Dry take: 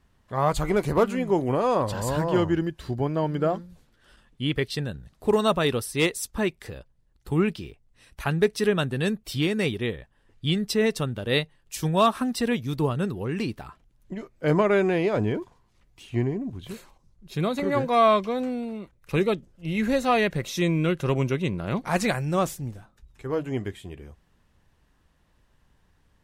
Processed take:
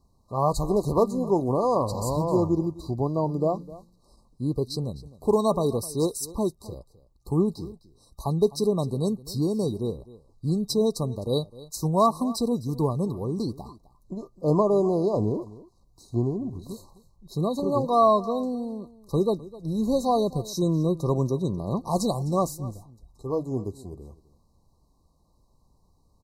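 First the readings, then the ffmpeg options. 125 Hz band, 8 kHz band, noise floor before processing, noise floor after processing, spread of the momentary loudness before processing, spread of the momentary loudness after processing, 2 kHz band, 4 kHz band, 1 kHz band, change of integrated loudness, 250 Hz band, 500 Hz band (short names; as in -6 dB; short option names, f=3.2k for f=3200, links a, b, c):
0.0 dB, 0.0 dB, -65 dBFS, -64 dBFS, 14 LU, 14 LU, under -40 dB, -6.5 dB, -0.5 dB, -0.5 dB, 0.0 dB, 0.0 dB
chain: -af "afftfilt=real='re*(1-between(b*sr/4096,1200,3800))':imag='im*(1-between(b*sr/4096,1200,3800))':win_size=4096:overlap=0.75,aecho=1:1:257:0.112"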